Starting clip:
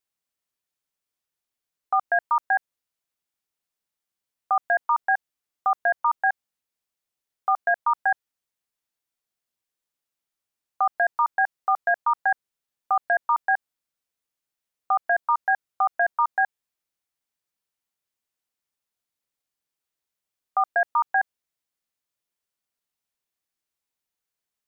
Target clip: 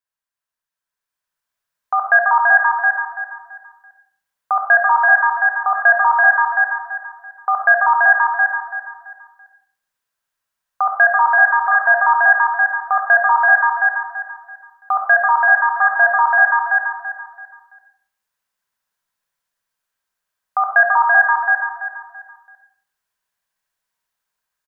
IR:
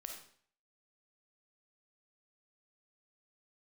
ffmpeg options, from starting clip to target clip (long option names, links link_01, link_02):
-filter_complex "[0:a]aecho=1:1:334|668|1002|1336:0.668|0.201|0.0602|0.018,dynaudnorm=framelen=150:gausssize=17:maxgain=8.5dB,equalizer=frequency=315:width_type=o:width=0.33:gain=-9,equalizer=frequency=1000:width_type=o:width=0.33:gain=9,equalizer=frequency=1600:width_type=o:width=0.33:gain=11[link_01];[1:a]atrim=start_sample=2205[link_02];[link_01][link_02]afir=irnorm=-1:irlink=0,volume=-1dB"